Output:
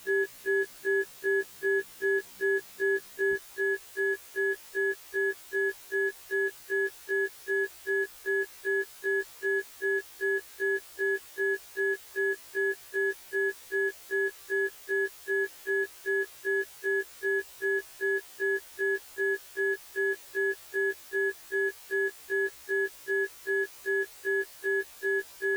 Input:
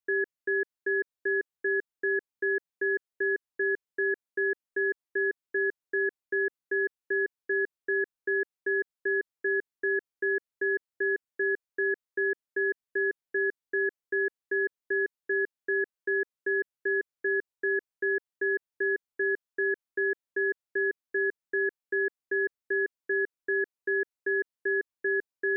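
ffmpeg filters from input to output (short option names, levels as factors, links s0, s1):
-af "aeval=exprs='val(0)+0.5*0.0133*sgn(val(0))':c=same,asetnsamples=n=441:p=0,asendcmd='3.33 equalizer g -11',equalizer=f=190:w=1.5:g=3,afftfilt=real='re*1.73*eq(mod(b,3),0)':imag='im*1.73*eq(mod(b,3),0)':win_size=2048:overlap=0.75,volume=0.891"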